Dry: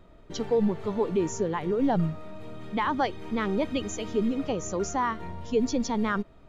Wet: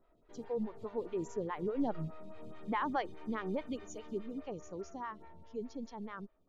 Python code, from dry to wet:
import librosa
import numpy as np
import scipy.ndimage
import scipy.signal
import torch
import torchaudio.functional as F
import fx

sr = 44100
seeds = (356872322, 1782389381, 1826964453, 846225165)

y = fx.doppler_pass(x, sr, speed_mps=11, closest_m=13.0, pass_at_s=2.44)
y = fx.stagger_phaser(y, sr, hz=4.8)
y = F.gain(torch.from_numpy(y), -6.0).numpy()